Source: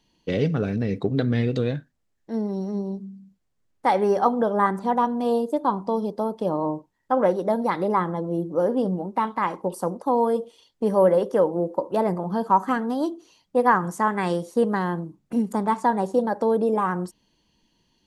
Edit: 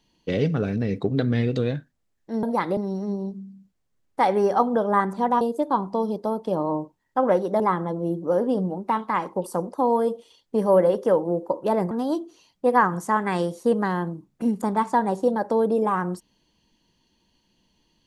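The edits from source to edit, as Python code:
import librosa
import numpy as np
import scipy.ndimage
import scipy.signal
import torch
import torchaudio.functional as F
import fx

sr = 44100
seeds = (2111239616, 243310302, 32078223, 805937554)

y = fx.edit(x, sr, fx.cut(start_s=5.07, length_s=0.28),
    fx.move(start_s=7.54, length_s=0.34, to_s=2.43),
    fx.cut(start_s=12.19, length_s=0.63), tone=tone)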